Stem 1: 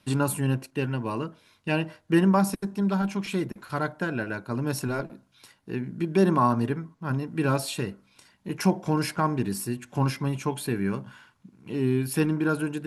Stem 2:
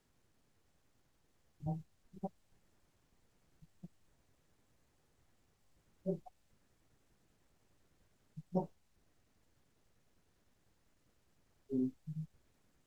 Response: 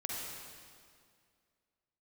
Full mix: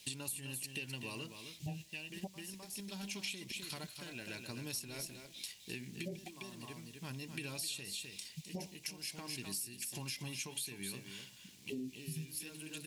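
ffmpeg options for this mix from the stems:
-filter_complex "[0:a]acompressor=threshold=-31dB:ratio=5,volume=-10.5dB,asplit=2[link_01][link_02];[link_02]volume=-9.5dB[link_03];[1:a]highpass=57,alimiter=level_in=8dB:limit=-24dB:level=0:latency=1:release=108,volume=-8dB,volume=2.5dB,asplit=2[link_04][link_05];[link_05]apad=whole_len=567560[link_06];[link_01][link_06]sidechaincompress=threshold=-56dB:ratio=5:attack=25:release=584[link_07];[link_03]aecho=0:1:257:1[link_08];[link_07][link_04][link_08]amix=inputs=3:normalize=0,highshelf=frequency=2200:gain=-10.5,aexciter=amount=15.6:drive=7:freq=2200,acompressor=threshold=-38dB:ratio=10"

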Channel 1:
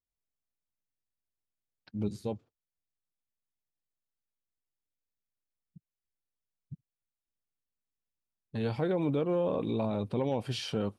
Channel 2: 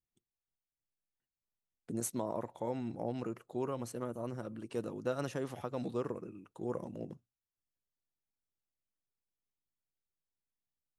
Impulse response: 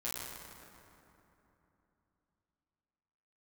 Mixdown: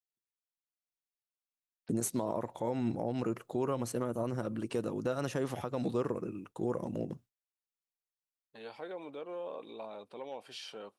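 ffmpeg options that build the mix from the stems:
-filter_complex "[0:a]highpass=530,volume=-7.5dB[link_01];[1:a]agate=range=-33dB:threshold=-55dB:ratio=3:detection=peak,acontrast=79,volume=1dB[link_02];[link_01][link_02]amix=inputs=2:normalize=0,alimiter=limit=-22.5dB:level=0:latency=1:release=184"

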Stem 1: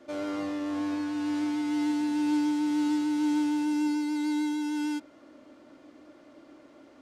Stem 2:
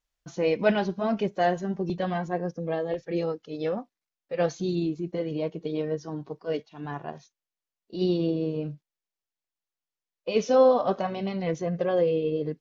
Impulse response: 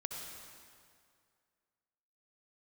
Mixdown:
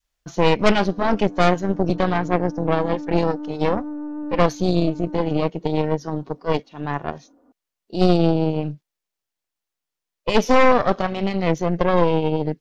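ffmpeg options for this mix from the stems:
-filter_complex "[0:a]lowpass=frequency=1200:width=0.5412,lowpass=frequency=1200:width=1.3066,aecho=1:1:4.1:0.8,adelay=500,volume=-10dB[link_01];[1:a]adynamicequalizer=threshold=0.0224:dfrequency=570:dqfactor=0.86:tfrequency=570:tqfactor=0.86:attack=5:release=100:ratio=0.375:range=2.5:mode=cutabove:tftype=bell,volume=1dB,asplit=2[link_02][link_03];[link_03]apad=whole_len=331730[link_04];[link_01][link_04]sidechaincompress=threshold=-26dB:ratio=8:attack=16:release=938[link_05];[link_05][link_02]amix=inputs=2:normalize=0,aeval=exprs='0.501*(cos(1*acos(clip(val(0)/0.501,-1,1)))-cos(1*PI/2))+0.0794*(cos(5*acos(clip(val(0)/0.501,-1,1)))-cos(5*PI/2))+0.178*(cos(8*acos(clip(val(0)/0.501,-1,1)))-cos(8*PI/2))':channel_layout=same"

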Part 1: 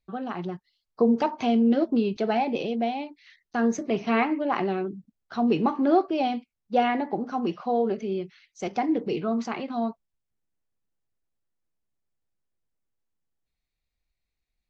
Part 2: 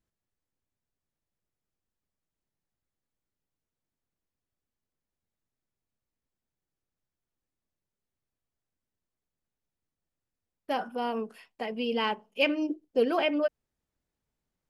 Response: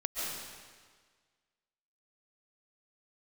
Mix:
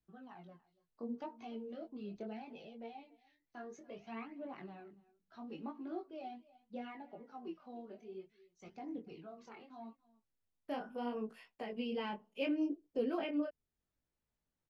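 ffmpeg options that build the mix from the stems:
-filter_complex "[0:a]aphaser=in_gain=1:out_gain=1:delay=3.8:decay=0.57:speed=0.45:type=triangular,volume=-19.5dB,asplit=2[link_01][link_02];[link_02]volume=-22dB[link_03];[1:a]volume=-2dB[link_04];[link_03]aecho=0:1:286:1[link_05];[link_01][link_04][link_05]amix=inputs=3:normalize=0,highshelf=frequency=6400:gain=-6,acrossover=split=390[link_06][link_07];[link_07]acompressor=threshold=-44dB:ratio=2[link_08];[link_06][link_08]amix=inputs=2:normalize=0,flanger=delay=17.5:depth=7:speed=0.7"

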